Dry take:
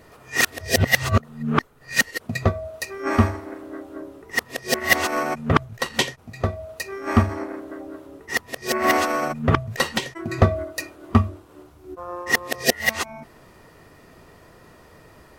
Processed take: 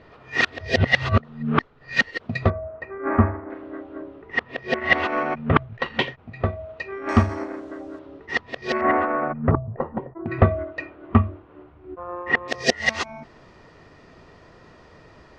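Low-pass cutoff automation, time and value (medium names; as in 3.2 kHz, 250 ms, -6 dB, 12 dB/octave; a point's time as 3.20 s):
low-pass 24 dB/octave
4.1 kHz
from 2.50 s 1.8 kHz
from 3.50 s 3.2 kHz
from 7.09 s 7.2 kHz
from 7.99 s 4.1 kHz
from 8.81 s 1.8 kHz
from 9.51 s 1 kHz
from 10.26 s 2.7 kHz
from 12.48 s 5.8 kHz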